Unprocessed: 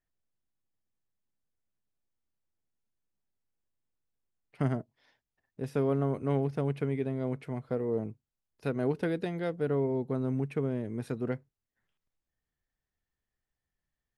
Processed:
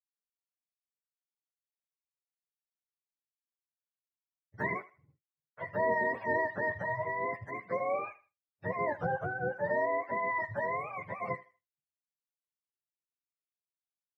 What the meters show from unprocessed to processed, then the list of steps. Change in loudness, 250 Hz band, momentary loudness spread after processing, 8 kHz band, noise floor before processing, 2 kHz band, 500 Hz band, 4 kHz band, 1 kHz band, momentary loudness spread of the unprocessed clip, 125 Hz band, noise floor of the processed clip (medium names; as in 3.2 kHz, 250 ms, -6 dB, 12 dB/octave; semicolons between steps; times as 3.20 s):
-1.0 dB, -12.0 dB, 9 LU, no reading, under -85 dBFS, +12.5 dB, -2.0 dB, under -10 dB, +10.0 dB, 7 LU, -12.0 dB, under -85 dBFS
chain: spectrum inverted on a logarithmic axis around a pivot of 510 Hz; thinning echo 79 ms, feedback 28%, high-pass 440 Hz, level -17 dB; expander -59 dBFS